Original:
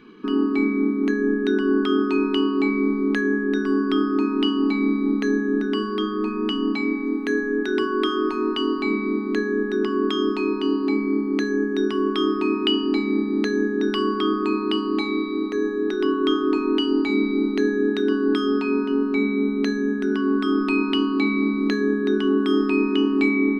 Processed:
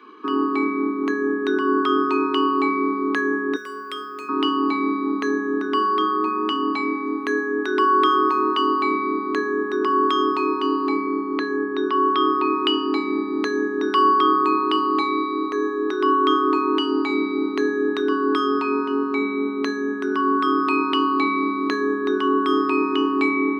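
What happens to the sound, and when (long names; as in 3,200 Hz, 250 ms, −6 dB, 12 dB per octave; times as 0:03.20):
0:03.56–0:04.29: drawn EQ curve 130 Hz 0 dB, 330 Hz −25 dB, 520 Hz +5 dB, 780 Hz −20 dB, 2,100 Hz 0 dB, 5,000 Hz −2 dB, 7,800 Hz +12 dB
0:11.07–0:12.65: elliptic band-pass filter 140–4,400 Hz
whole clip: Butterworth high-pass 270 Hz 36 dB per octave; parametric band 1,100 Hz +13.5 dB 0.48 octaves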